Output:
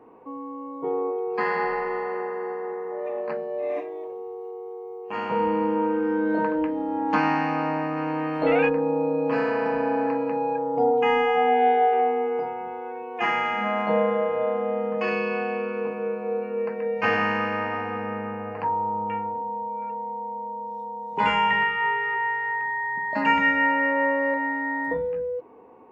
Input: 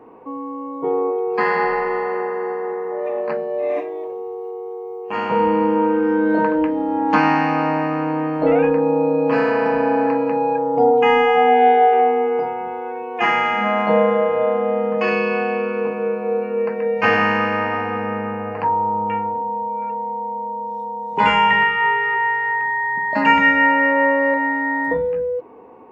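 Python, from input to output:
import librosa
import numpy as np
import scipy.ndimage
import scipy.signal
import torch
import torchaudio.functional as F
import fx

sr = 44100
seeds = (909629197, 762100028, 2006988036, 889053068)

y = fx.peak_eq(x, sr, hz=3900.0, db=fx.line((7.96, 3.5), (8.68, 15.0)), octaves=2.8, at=(7.96, 8.68), fade=0.02)
y = y * librosa.db_to_amplitude(-6.5)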